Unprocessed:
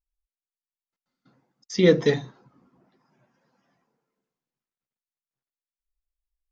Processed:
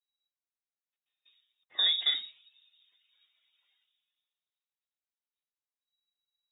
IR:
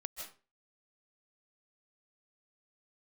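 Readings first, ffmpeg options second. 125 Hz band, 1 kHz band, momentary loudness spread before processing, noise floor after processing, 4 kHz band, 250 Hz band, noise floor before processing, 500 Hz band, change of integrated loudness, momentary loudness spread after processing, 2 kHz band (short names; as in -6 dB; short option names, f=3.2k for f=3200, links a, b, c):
under -40 dB, -9.5 dB, 13 LU, under -85 dBFS, +9.0 dB, under -40 dB, under -85 dBFS, -36.5 dB, -5.5 dB, 14 LU, -9.0 dB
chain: -af "alimiter=limit=-13dB:level=0:latency=1:release=93,lowpass=f=3.3k:t=q:w=0.5098,lowpass=f=3.3k:t=q:w=0.6013,lowpass=f=3.3k:t=q:w=0.9,lowpass=f=3.3k:t=q:w=2.563,afreqshift=-3900,highpass=160,equalizer=f=230:w=3.3:g=-13,volume=-5dB"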